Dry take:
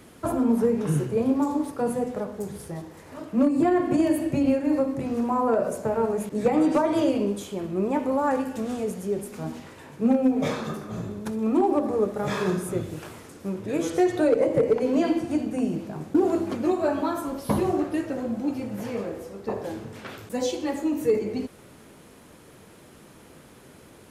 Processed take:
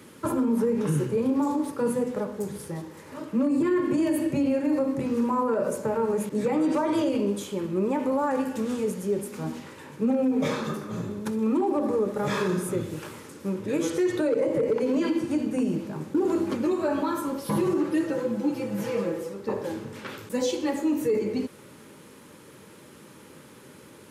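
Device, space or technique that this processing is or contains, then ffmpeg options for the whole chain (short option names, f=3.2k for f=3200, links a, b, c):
PA system with an anti-feedback notch: -filter_complex "[0:a]asettb=1/sr,asplit=3[a][b][c];[a]atrim=end=17.454[d];[b]atrim=start=17.45:end=19.34,asetpts=PTS-STARTPTS,afade=t=in:d=0.004:c=qsin,afade=t=out:st=1.886:d=0.004:c=qsin,aecho=1:1:6:0.74,atrim=end_sample=83349[e];[c]atrim=start=19.336[f];[d][e]acrossfade=d=0.004:c1=hsin:c2=qsin[g];[g][f]acrossfade=d=0.004:c1=qsin:c2=hsin,highpass=110,asuperstop=centerf=700:order=4:qfactor=4.7,alimiter=limit=-18.5dB:level=0:latency=1:release=43,volume=1.5dB"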